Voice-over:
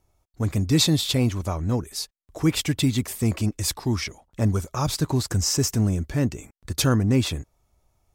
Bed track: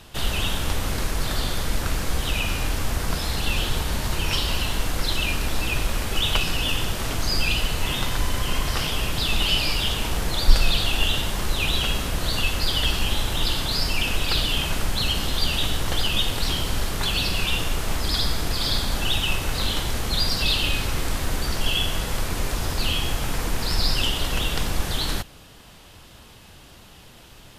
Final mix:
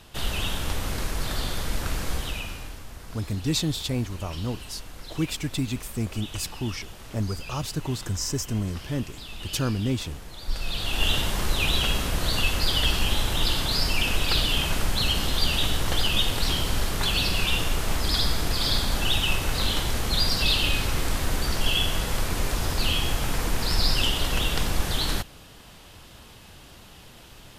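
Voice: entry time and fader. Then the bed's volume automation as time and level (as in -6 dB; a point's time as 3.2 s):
2.75 s, -6.0 dB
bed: 2.13 s -3.5 dB
2.85 s -16.5 dB
10.39 s -16.5 dB
11.09 s -0.5 dB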